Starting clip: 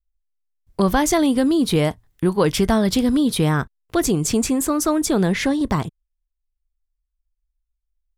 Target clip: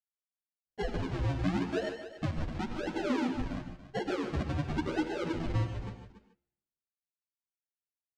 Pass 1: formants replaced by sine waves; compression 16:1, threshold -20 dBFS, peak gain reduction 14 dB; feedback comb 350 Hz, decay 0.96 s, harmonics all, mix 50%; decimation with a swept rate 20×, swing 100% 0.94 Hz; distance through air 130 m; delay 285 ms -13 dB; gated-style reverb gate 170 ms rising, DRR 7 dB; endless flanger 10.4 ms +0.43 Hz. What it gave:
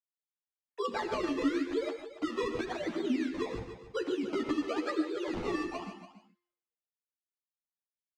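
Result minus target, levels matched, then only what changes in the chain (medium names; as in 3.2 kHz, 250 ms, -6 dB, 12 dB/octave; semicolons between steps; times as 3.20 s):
decimation with a swept rate: distortion -27 dB
change: decimation with a swept rate 71×, swing 100% 0.94 Hz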